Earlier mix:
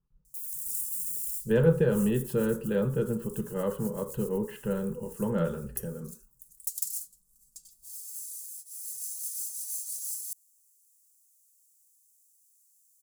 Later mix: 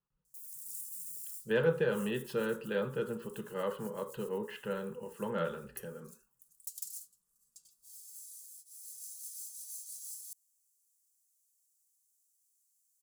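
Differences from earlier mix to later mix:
speech: add tilt +4.5 dB/oct; master: add high shelf 4000 Hz -11 dB

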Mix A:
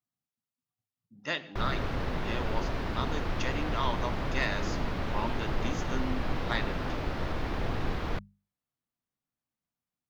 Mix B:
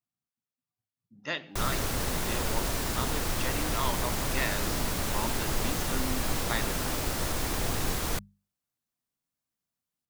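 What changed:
speech: send -8.5 dB; background: remove air absorption 310 m

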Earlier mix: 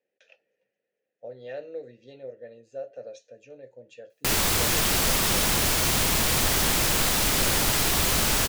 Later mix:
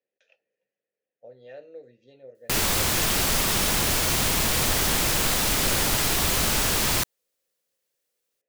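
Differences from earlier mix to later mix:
speech -6.5 dB; background: entry -1.75 s

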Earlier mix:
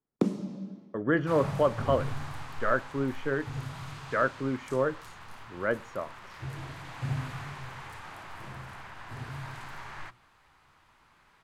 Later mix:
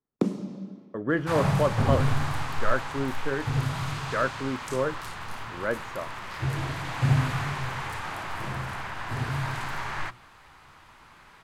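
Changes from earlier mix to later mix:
first sound: send +7.5 dB; second sound +10.0 dB

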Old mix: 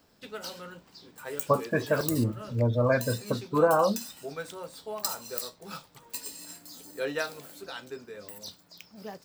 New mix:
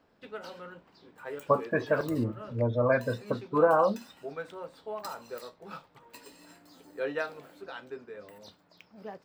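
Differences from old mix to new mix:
background: add high shelf 3500 Hz -7.5 dB; master: add tone controls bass -5 dB, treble -12 dB

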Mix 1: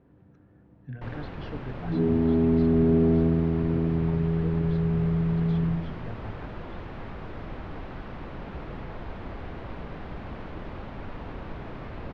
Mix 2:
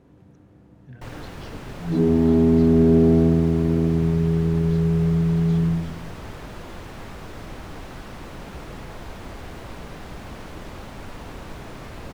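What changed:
speech -5.5 dB; second sound +5.0 dB; master: remove air absorption 330 m

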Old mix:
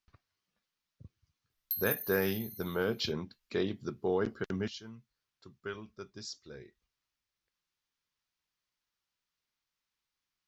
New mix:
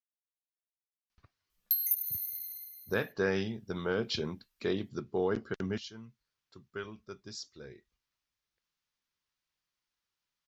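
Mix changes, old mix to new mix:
speech: entry +1.10 s; background +6.0 dB

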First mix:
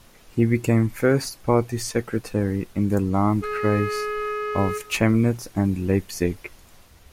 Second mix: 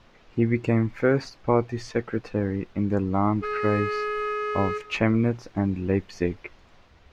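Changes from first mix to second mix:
speech: add air absorption 200 m; master: add low shelf 270 Hz -4.5 dB

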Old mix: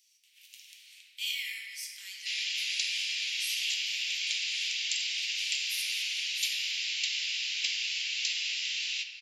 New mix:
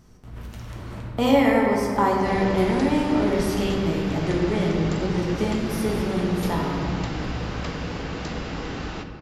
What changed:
background -10.5 dB; master: remove steep high-pass 2400 Hz 48 dB/oct

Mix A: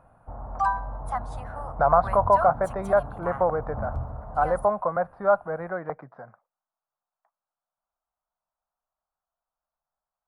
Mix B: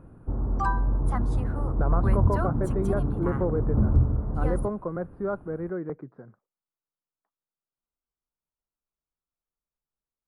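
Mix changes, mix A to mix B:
speech -9.0 dB; master: add resonant low shelf 500 Hz +11 dB, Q 3

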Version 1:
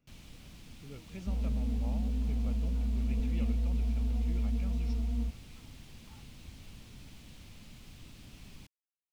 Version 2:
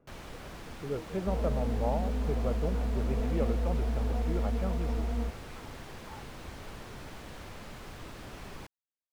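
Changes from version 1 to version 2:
speech: add tilt shelf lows +8 dB, about 1400 Hz; first sound +4.5 dB; master: add band shelf 810 Hz +12.5 dB 2.7 oct

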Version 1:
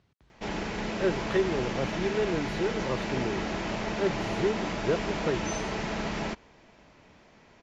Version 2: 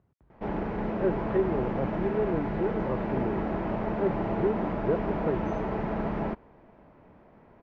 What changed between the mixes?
background +3.0 dB; master: add LPF 1100 Hz 12 dB/oct

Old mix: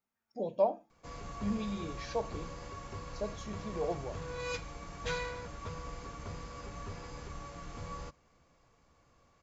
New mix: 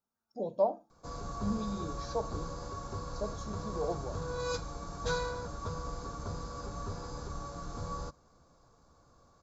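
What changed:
background +4.0 dB; master: add band shelf 2400 Hz -14.5 dB 1 oct

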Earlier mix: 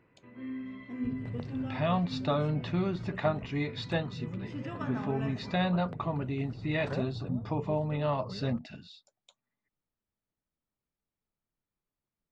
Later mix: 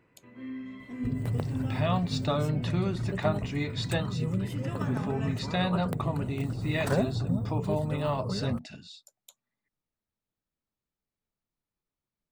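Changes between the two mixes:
second sound +9.0 dB; master: remove Gaussian blur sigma 1.7 samples

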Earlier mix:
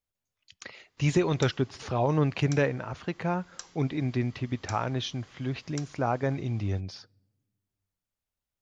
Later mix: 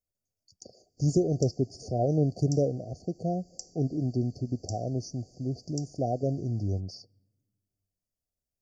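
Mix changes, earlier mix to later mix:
background: send +8.5 dB; master: add brick-wall FIR band-stop 770–4400 Hz

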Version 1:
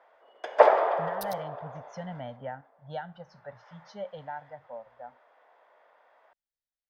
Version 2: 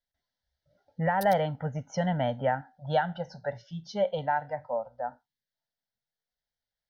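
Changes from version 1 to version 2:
speech +11.0 dB; first sound: muted

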